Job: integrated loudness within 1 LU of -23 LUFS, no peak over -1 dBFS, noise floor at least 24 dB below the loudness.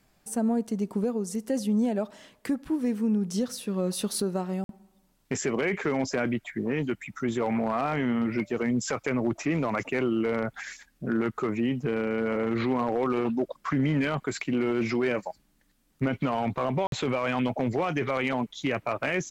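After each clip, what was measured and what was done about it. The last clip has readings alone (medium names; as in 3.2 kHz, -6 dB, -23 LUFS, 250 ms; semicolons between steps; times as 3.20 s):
dropouts 2; longest dropout 52 ms; loudness -28.5 LUFS; peak level -18.0 dBFS; loudness target -23.0 LUFS
-> interpolate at 4.64/16.87 s, 52 ms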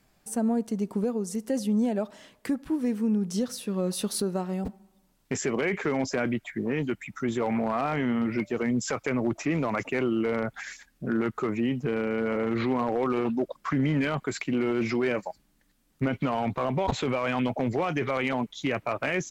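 dropouts 0; loudness -28.5 LUFS; peak level -13.0 dBFS; loudness target -23.0 LUFS
-> trim +5.5 dB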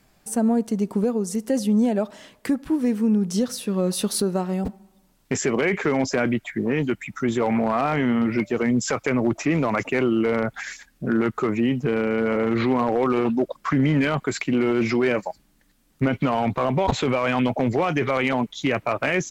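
loudness -23.0 LUFS; peak level -7.5 dBFS; noise floor -61 dBFS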